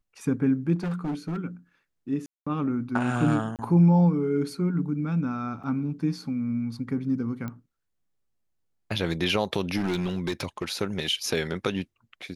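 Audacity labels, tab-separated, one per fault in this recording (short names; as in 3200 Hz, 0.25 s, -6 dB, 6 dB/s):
0.750000	1.370000	clipped -26 dBFS
2.260000	2.460000	gap 0.205 s
3.560000	3.590000	gap 28 ms
5.630000	5.640000	gap 6.3 ms
7.480000	7.480000	pop -22 dBFS
9.770000	10.730000	clipped -22.5 dBFS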